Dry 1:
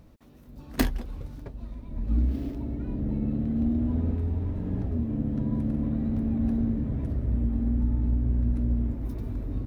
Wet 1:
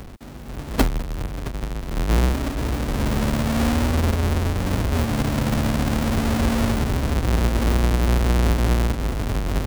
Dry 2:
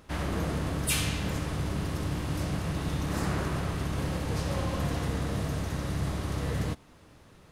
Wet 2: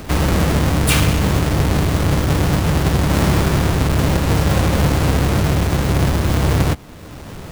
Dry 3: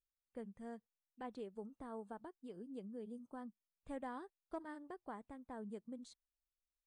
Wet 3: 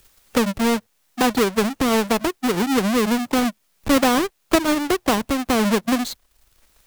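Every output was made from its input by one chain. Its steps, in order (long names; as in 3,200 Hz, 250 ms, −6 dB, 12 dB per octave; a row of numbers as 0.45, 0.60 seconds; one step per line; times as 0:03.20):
each half-wave held at its own peak
multiband upward and downward compressor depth 40%
normalise the peak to −3 dBFS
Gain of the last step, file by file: +2.0, +9.5, +25.5 decibels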